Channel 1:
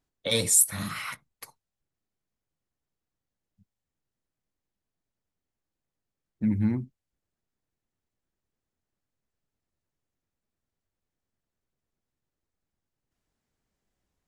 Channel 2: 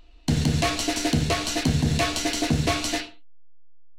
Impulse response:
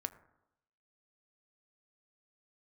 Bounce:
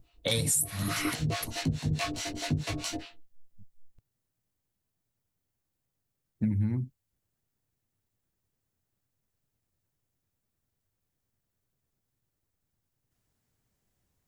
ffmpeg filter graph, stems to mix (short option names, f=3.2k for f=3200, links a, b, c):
-filter_complex "[0:a]highshelf=f=8.9k:g=10.5,volume=1dB[a];[1:a]flanger=delay=18.5:depth=2.1:speed=0.65,acrossover=split=590[b][c];[b]aeval=exprs='val(0)*(1-1/2+1/2*cos(2*PI*4.7*n/s))':c=same[d];[c]aeval=exprs='val(0)*(1-1/2-1/2*cos(2*PI*4.7*n/s))':c=same[e];[d][e]amix=inputs=2:normalize=0,volume=-2dB[f];[a][f]amix=inputs=2:normalize=0,equalizer=f=110:t=o:w=0.97:g=8.5,acompressor=threshold=-24dB:ratio=16"